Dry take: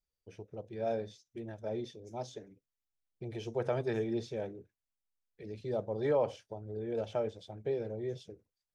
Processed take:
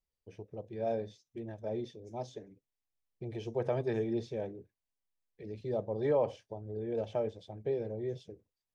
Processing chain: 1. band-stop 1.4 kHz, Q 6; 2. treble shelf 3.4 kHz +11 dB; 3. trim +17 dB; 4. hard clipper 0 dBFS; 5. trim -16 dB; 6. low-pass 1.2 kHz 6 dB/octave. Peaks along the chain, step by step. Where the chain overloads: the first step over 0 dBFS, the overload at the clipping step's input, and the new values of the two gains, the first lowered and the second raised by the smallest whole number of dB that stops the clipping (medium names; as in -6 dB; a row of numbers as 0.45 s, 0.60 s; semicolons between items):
-20.0 dBFS, -19.5 dBFS, -2.5 dBFS, -2.5 dBFS, -18.5 dBFS, -19.5 dBFS; nothing clips